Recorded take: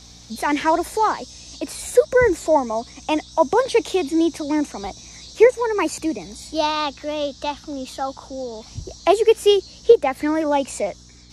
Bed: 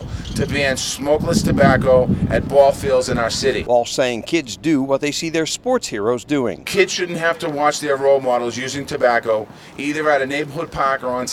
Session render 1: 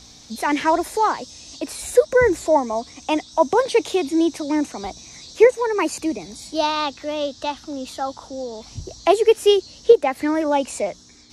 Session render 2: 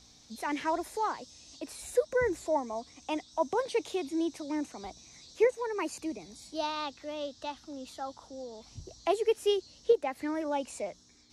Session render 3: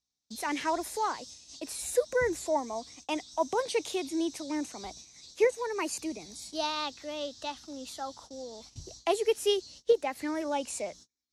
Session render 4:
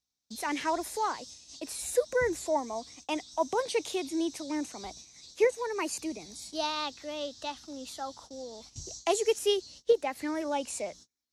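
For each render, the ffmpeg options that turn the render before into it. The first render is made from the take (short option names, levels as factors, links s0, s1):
-af "bandreject=f=60:t=h:w=4,bandreject=f=120:t=h:w=4,bandreject=f=180:t=h:w=4"
-af "volume=0.237"
-af "agate=range=0.0178:threshold=0.00251:ratio=16:detection=peak,highshelf=f=3100:g=8.5"
-filter_complex "[0:a]asettb=1/sr,asplit=3[s0][s1][s2];[s0]atrim=end=8.744[s3];[s1]atrim=start=8.74:end=9.39,asetpts=PTS-STARTPTS,afade=t=in:d=0.004:c=qsin,afade=t=out:st=0.646:d=0.004:c=qsin,equalizer=f=6800:w=1.9:g=10.5[s4];[s2]atrim=start=9.386[s5];[s3][s4]acrossfade=d=0.004:c1=hsin:c2=qsin[s6];[s6][s5]acrossfade=d=0.004:c1=qsin:c2=hsin"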